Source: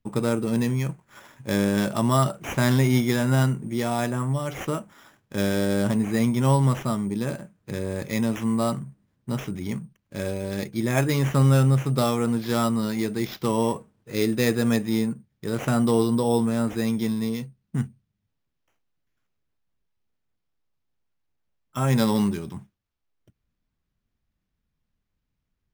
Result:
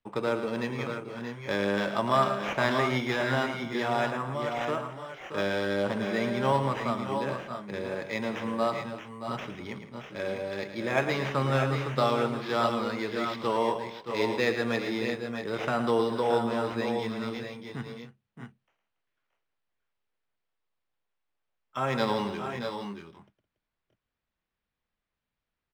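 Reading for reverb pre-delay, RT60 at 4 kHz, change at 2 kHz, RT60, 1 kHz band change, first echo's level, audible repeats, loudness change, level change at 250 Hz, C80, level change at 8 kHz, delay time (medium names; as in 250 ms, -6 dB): no reverb, no reverb, +1.0 dB, no reverb, +1.0 dB, -9.5 dB, 4, -5.5 dB, -9.0 dB, no reverb, -13.5 dB, 110 ms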